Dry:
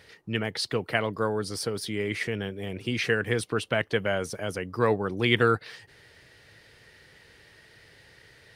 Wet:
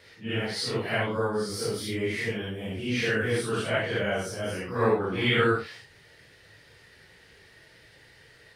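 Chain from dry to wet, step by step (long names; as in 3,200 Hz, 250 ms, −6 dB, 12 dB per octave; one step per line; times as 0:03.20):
random phases in long frames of 200 ms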